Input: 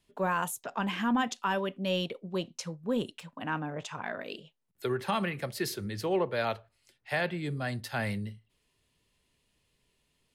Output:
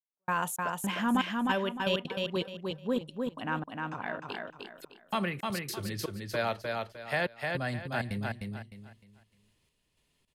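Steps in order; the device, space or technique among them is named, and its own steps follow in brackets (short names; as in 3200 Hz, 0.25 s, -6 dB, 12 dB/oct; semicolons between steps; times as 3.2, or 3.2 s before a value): trance gate with a delay (step gate "...xxx.x.xxxx" 161 bpm -60 dB; feedback echo 0.305 s, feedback 30%, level -3.5 dB); 1.11–2.97 dynamic EQ 3700 Hz, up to +4 dB, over -47 dBFS, Q 0.91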